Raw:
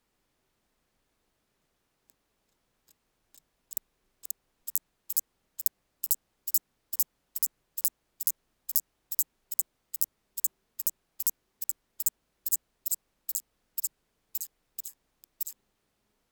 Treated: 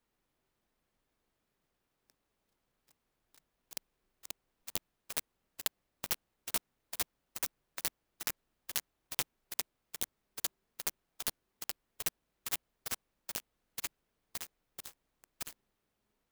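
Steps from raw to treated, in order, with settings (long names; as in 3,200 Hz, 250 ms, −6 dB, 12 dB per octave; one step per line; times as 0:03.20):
converter with an unsteady clock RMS 0.036 ms
level −5.5 dB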